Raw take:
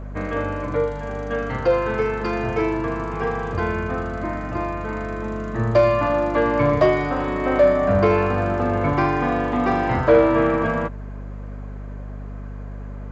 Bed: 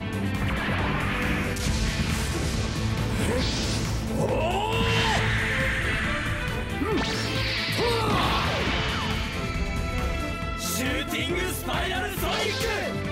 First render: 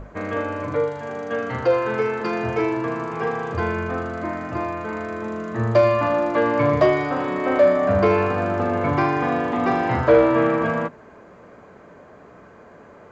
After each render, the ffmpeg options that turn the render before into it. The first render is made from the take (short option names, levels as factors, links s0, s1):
-af "bandreject=f=50:t=h:w=6,bandreject=f=100:t=h:w=6,bandreject=f=150:t=h:w=6,bandreject=f=200:t=h:w=6,bandreject=f=250:t=h:w=6,bandreject=f=300:t=h:w=6"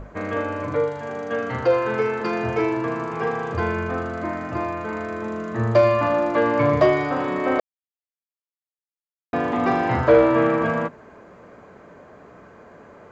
-filter_complex "[0:a]asplit=3[s0][s1][s2];[s0]atrim=end=7.6,asetpts=PTS-STARTPTS,afade=t=out:st=7.596:d=0.004:c=hsin[s3];[s1]atrim=start=7.6:end=9.33,asetpts=PTS-STARTPTS,volume=0[s4];[s2]atrim=start=9.33,asetpts=PTS-STARTPTS,afade=t=in:d=0.004:c=hsin[s5];[s3][s4][s5]concat=n=3:v=0:a=1"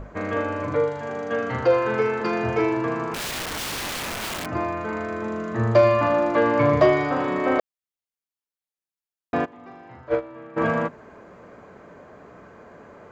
-filter_complex "[0:a]asettb=1/sr,asplit=3[s0][s1][s2];[s0]atrim=end=3.144[s3];[s1]atrim=start=3.14:end=4.46,asetpts=PTS-STARTPTS,afade=t=in:d=0.004:c=qsin,afade=t=out:st=1.316:d=0.004:c=qsin,aeval=exprs='(mod(17.8*val(0)+1,2)-1)/17.8':c=same[s4];[s2]atrim=start=4.456[s5];[s3][s4]acrossfade=d=0.004:c1=hsin:c2=qsin[s6];[s6][s5]acrossfade=d=0.004:c1=qsin:c2=hsin,asplit=3[s7][s8][s9];[s7]afade=t=out:st=9.44:d=0.02[s10];[s8]agate=range=0.0708:threshold=0.282:ratio=16:release=100:detection=peak,afade=t=in:st=9.44:d=0.02,afade=t=out:st=10.56:d=0.02[s11];[s9]afade=t=in:st=10.56:d=0.02[s12];[s10][s11][s12]amix=inputs=3:normalize=0"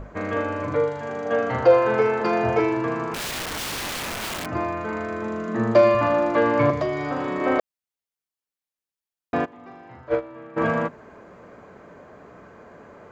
-filter_complex "[0:a]asettb=1/sr,asplit=3[s0][s1][s2];[s0]atrim=end=1.254[s3];[s1]atrim=start=1.25:end=2.6,asetpts=PTS-STARTPTS,afade=t=in:d=0.004:c=qsin,afade=t=out:st=1.346:d=0.004:c=qsin,equalizer=f=680:w=1.5:g=6.5[s4];[s2]atrim=start=2.596[s5];[s3][s4]acrossfade=d=0.004:c1=hsin:c2=qsin[s6];[s6][s5]acrossfade=d=0.004:c1=qsin:c2=hsin,asettb=1/sr,asplit=3[s7][s8][s9];[s7]atrim=end=5.484[s10];[s8]atrim=start=5.48:end=5.95,asetpts=PTS-STARTPTS,afade=t=in:d=0.004:c=qsin,afade=t=out:st=0.466:d=0.004:c=qsin,highpass=f=200:t=q:w=1.6[s11];[s9]atrim=start=5.946[s12];[s10][s11]acrossfade=d=0.004:c1=hsin:c2=qsin[s13];[s13][s12]acrossfade=d=0.004:c1=qsin:c2=hsin,asettb=1/sr,asplit=3[s14][s15][s16];[s14]atrim=end=6.704[s17];[s15]atrim=start=6.7:end=7.41,asetpts=PTS-STARTPTS,afade=t=in:d=0.004:c=qsin,afade=t=out:st=0.706:d=0.004:c=qsin,acrossover=split=330|4100[s18][s19][s20];[s18]acompressor=threshold=0.0355:ratio=4[s21];[s19]acompressor=threshold=0.0501:ratio=4[s22];[s20]acompressor=threshold=0.00398:ratio=4[s23];[s21][s22][s23]amix=inputs=3:normalize=0[s24];[s16]atrim=start=7.406[s25];[s17][s24]acrossfade=d=0.004:c1=hsin:c2=qsin[s26];[s26][s25]acrossfade=d=0.004:c1=qsin:c2=hsin"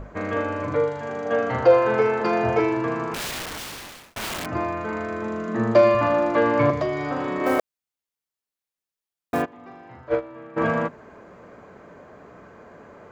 -filter_complex "[0:a]asplit=3[s0][s1][s2];[s0]afade=t=out:st=7.45:d=0.02[s3];[s1]acrusher=bits=5:mode=log:mix=0:aa=0.000001,afade=t=in:st=7.45:d=0.02,afade=t=out:st=9.41:d=0.02[s4];[s2]afade=t=in:st=9.41:d=0.02[s5];[s3][s4][s5]amix=inputs=3:normalize=0,asplit=2[s6][s7];[s6]atrim=end=4.16,asetpts=PTS-STARTPTS,afade=t=out:st=3.23:d=0.93[s8];[s7]atrim=start=4.16,asetpts=PTS-STARTPTS,afade=t=in:d=0.004:c=hsin[s9];[s8][s9]concat=n=2:v=0:a=1"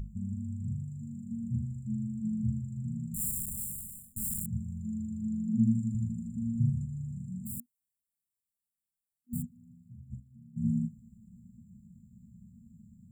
-af "afftfilt=real='re*(1-between(b*sr/4096,240,7100))':imag='im*(1-between(b*sr/4096,240,7100))':win_size=4096:overlap=0.75,adynamicequalizer=threshold=0.00178:dfrequency=6800:dqfactor=0.7:tfrequency=6800:tqfactor=0.7:attack=5:release=100:ratio=0.375:range=2.5:mode=boostabove:tftype=highshelf"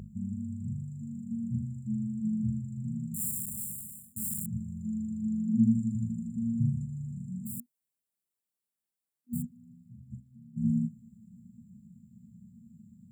-af "highpass=100,equalizer=f=380:t=o:w=1.4:g=6"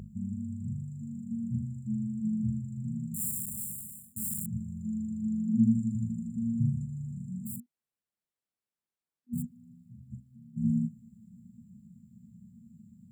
-filter_complex "[0:a]asettb=1/sr,asplit=3[s0][s1][s2];[s0]atrim=end=7.564[s3];[s1]atrim=start=7.56:end=9.38,asetpts=PTS-STARTPTS,afade=t=in:d=0.004:c=qsin,afade=t=out:st=1.816:d=0.004:c=qsin,aemphasis=mode=reproduction:type=50kf[s4];[s2]atrim=start=9.376[s5];[s3][s4]acrossfade=d=0.004:c1=hsin:c2=qsin[s6];[s6][s5]acrossfade=d=0.004:c1=qsin:c2=hsin"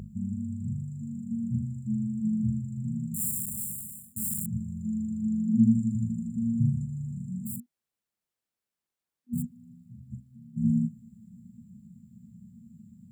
-af "volume=1.41"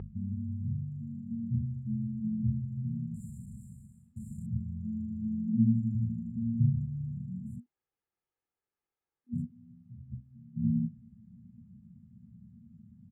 -af "lowpass=1800,aecho=1:1:2.4:0.47"